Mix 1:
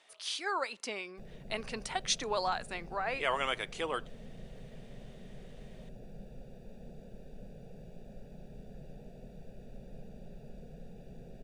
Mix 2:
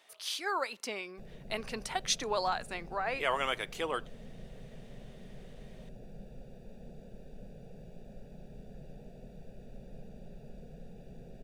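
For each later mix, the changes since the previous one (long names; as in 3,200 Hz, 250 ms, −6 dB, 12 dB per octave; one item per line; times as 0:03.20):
speech: remove Chebyshev low-pass filter 10,000 Hz, order 6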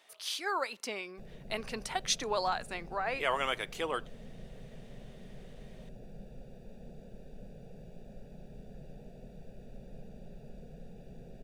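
nothing changed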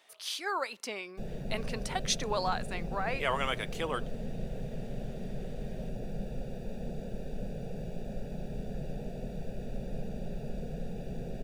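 background +11.0 dB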